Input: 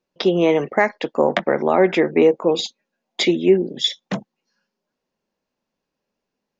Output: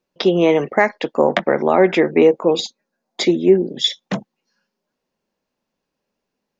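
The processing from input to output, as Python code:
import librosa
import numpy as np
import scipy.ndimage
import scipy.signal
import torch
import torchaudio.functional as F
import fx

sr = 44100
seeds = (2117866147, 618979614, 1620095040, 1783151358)

y = fx.curve_eq(x, sr, hz=(1500.0, 2900.0, 4400.0), db=(0, -9, -1), at=(2.6, 3.71))
y = y * 10.0 ** (2.0 / 20.0)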